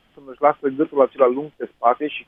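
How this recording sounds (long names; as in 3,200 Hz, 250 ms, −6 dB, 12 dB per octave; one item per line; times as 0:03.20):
background noise floor −61 dBFS
spectral slope −1.0 dB per octave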